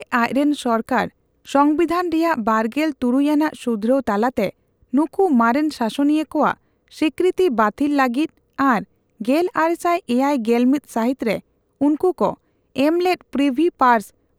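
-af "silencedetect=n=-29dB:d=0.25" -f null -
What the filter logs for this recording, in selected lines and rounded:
silence_start: 1.07
silence_end: 1.49 | silence_duration: 0.41
silence_start: 4.50
silence_end: 4.94 | silence_duration: 0.44
silence_start: 6.54
silence_end: 6.97 | silence_duration: 0.44
silence_start: 8.26
silence_end: 8.59 | silence_duration: 0.33
silence_start: 8.83
silence_end: 9.21 | silence_duration: 0.38
silence_start: 11.39
silence_end: 11.81 | silence_duration: 0.42
silence_start: 12.34
silence_end: 12.76 | silence_duration: 0.42
silence_start: 14.05
silence_end: 14.39 | silence_duration: 0.34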